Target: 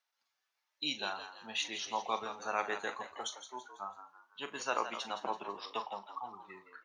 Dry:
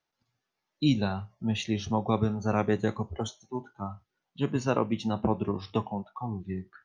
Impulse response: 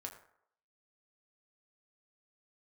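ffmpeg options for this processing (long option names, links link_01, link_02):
-filter_complex "[0:a]highpass=930,asplit=2[link_01][link_02];[link_02]adelay=40,volume=-12dB[link_03];[link_01][link_03]amix=inputs=2:normalize=0,asplit=2[link_04][link_05];[link_05]asplit=4[link_06][link_07][link_08][link_09];[link_06]adelay=166,afreqshift=75,volume=-10.5dB[link_10];[link_07]adelay=332,afreqshift=150,volume=-18dB[link_11];[link_08]adelay=498,afreqshift=225,volume=-25.6dB[link_12];[link_09]adelay=664,afreqshift=300,volume=-33.1dB[link_13];[link_10][link_11][link_12][link_13]amix=inputs=4:normalize=0[link_14];[link_04][link_14]amix=inputs=2:normalize=0"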